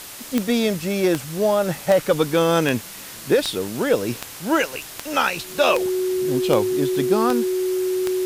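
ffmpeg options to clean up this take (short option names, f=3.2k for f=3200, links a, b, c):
-af "adeclick=t=4,bandreject=f=370:w=30,afwtdn=0.016"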